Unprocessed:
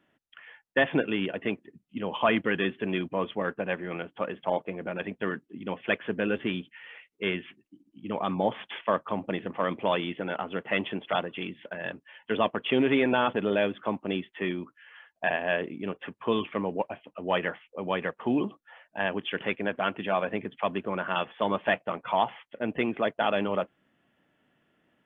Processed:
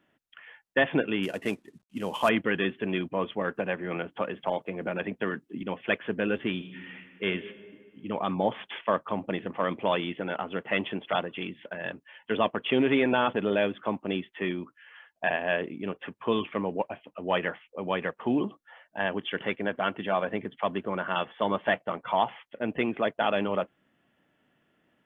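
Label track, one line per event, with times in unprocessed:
1.230000	2.290000	CVSD coder 64 kbps
3.540000	5.630000	three bands compressed up and down depth 70%
6.520000	7.260000	reverb throw, RT60 2 s, DRR 6 dB
18.350000	22.230000	band-stop 2.5 kHz, Q 11

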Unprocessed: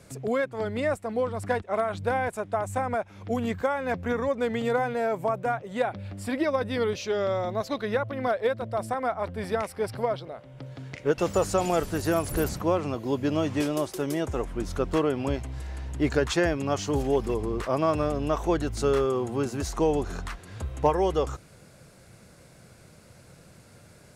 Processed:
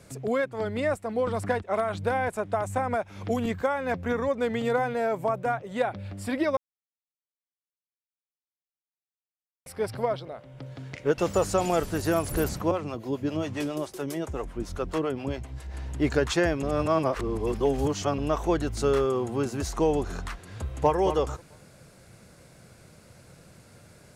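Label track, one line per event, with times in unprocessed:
1.270000	3.460000	three bands compressed up and down depth 70%
6.570000	9.660000	mute
12.710000	15.740000	harmonic tremolo 7.4 Hz, crossover 460 Hz
16.630000	18.180000	reverse
20.530000	20.970000	echo throw 220 ms, feedback 20%, level -8.5 dB

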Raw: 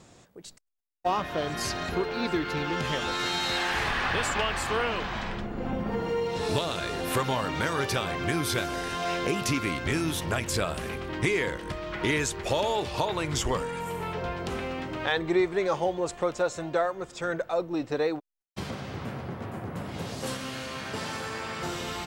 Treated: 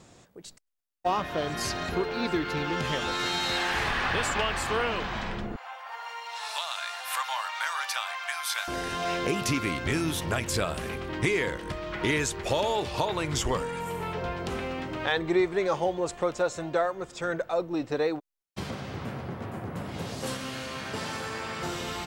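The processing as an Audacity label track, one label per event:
5.560000	8.680000	steep high-pass 780 Hz

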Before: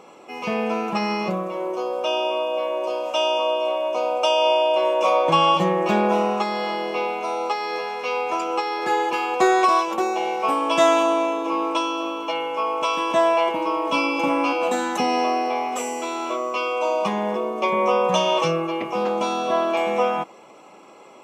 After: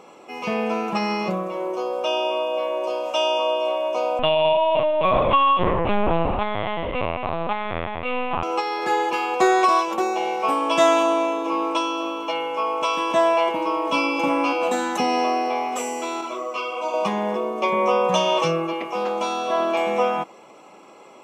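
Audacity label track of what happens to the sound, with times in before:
4.190000	8.430000	LPC vocoder at 8 kHz pitch kept
16.210000	16.940000	three-phase chorus
18.730000	19.590000	high-pass 360 Hz 6 dB/octave

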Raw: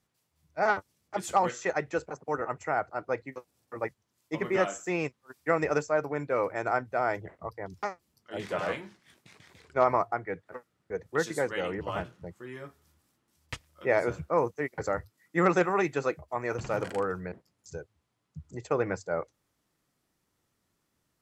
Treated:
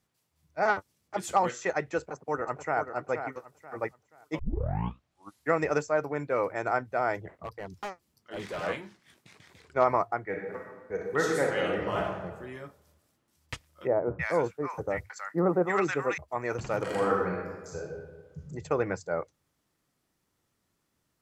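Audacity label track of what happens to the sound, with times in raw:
1.990000	2.800000	echo throw 480 ms, feedback 30%, level -8 dB
4.390000	4.390000	tape start 1.14 s
7.310000	8.640000	hard clipper -32 dBFS
10.240000	12.250000	reverb throw, RT60 1.2 s, DRR -0.5 dB
13.870000	16.180000	bands offset in time lows, highs 320 ms, split 1.1 kHz
16.820000	18.410000	reverb throw, RT60 1.3 s, DRR -4 dB

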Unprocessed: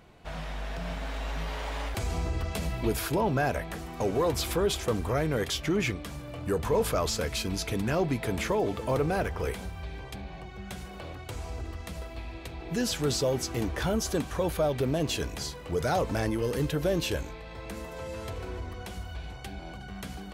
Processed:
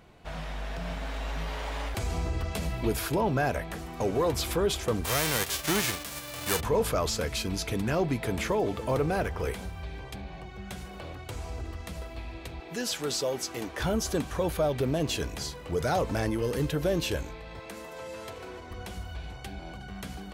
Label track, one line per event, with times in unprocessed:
5.040000	6.590000	formants flattened exponent 0.3
12.600000	13.800000	high-pass 450 Hz 6 dB/octave
17.590000	18.710000	high-pass 340 Hz 6 dB/octave

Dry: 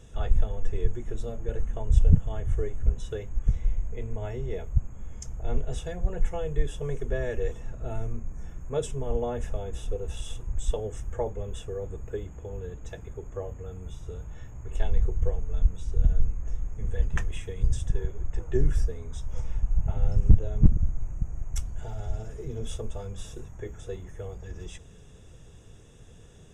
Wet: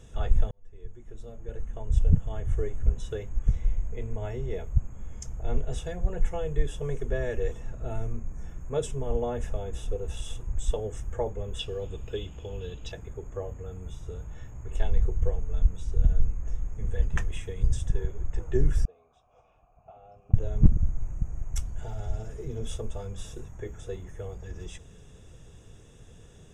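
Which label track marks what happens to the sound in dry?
0.510000	2.670000	fade in
11.590000	12.920000	high-order bell 3.7 kHz +16 dB 1.2 oct
18.850000	20.340000	vowel filter a

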